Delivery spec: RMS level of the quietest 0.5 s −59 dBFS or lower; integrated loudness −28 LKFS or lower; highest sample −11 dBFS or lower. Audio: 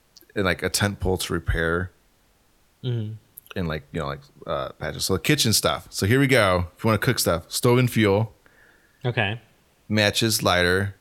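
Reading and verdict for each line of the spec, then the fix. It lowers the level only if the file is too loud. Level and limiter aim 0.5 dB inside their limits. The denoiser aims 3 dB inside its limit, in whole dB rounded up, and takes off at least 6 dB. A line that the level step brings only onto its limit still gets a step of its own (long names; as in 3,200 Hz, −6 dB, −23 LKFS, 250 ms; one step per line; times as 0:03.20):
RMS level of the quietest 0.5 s −61 dBFS: in spec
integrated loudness −22.5 LKFS: out of spec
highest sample −2.5 dBFS: out of spec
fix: level −6 dB
brickwall limiter −11.5 dBFS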